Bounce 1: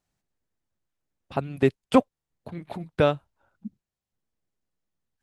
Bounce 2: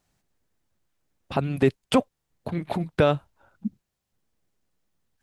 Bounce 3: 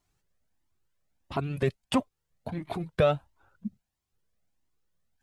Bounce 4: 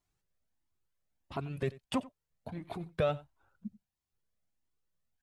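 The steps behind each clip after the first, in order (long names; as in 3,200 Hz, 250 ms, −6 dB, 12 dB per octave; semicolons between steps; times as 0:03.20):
boost into a limiter +16 dB; level −8 dB
flanger whose copies keep moving one way rising 1.5 Hz
single-tap delay 90 ms −20 dB; level −7 dB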